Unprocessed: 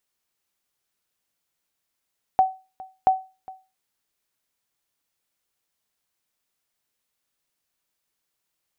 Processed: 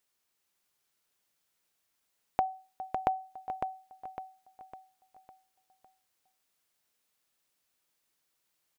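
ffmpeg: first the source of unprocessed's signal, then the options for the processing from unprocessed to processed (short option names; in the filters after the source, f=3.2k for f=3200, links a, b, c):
-f lavfi -i "aevalsrc='0.335*(sin(2*PI*757*mod(t,0.68))*exp(-6.91*mod(t,0.68)/0.3)+0.0841*sin(2*PI*757*max(mod(t,0.68)-0.41,0))*exp(-6.91*max(mod(t,0.68)-0.41,0)/0.3))':d=1.36:s=44100"
-filter_complex "[0:a]lowshelf=f=130:g=-4,acompressor=threshold=-26dB:ratio=6,asplit=2[a][b];[b]aecho=0:1:555|1110|1665|2220|2775:0.501|0.21|0.0884|0.0371|0.0156[c];[a][c]amix=inputs=2:normalize=0"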